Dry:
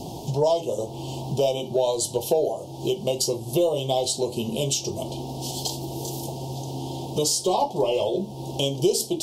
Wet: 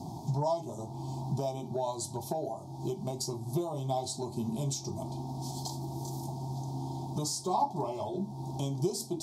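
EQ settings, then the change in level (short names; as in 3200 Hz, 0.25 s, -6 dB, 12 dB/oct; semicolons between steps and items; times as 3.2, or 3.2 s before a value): HPF 91 Hz; LPF 3000 Hz 6 dB/oct; fixed phaser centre 1200 Hz, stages 4; -1.5 dB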